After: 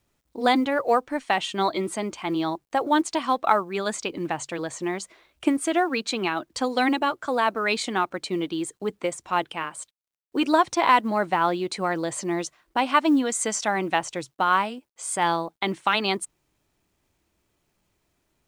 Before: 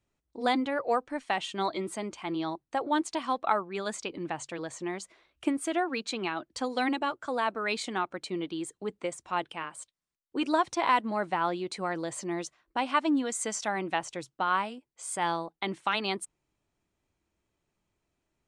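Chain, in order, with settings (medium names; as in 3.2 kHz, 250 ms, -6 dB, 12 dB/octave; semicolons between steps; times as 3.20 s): companded quantiser 8-bit; trim +6.5 dB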